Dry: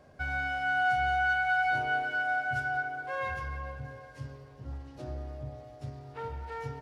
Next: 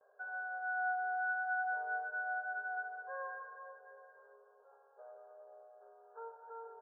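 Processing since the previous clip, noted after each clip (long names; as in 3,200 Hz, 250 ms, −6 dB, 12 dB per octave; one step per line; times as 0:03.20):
brick-wall band-pass 390–1,700 Hz
noise gate with hold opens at −52 dBFS
level −8.5 dB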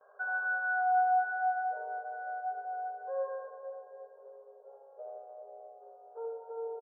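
single-tap delay 79 ms −3.5 dB
low-pass filter sweep 1,300 Hz → 590 Hz, 0:00.47–0:01.89
level +4 dB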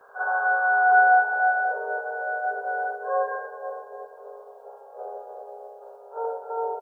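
ceiling on every frequency bin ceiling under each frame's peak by 16 dB
backwards echo 46 ms −8.5 dB
level +8.5 dB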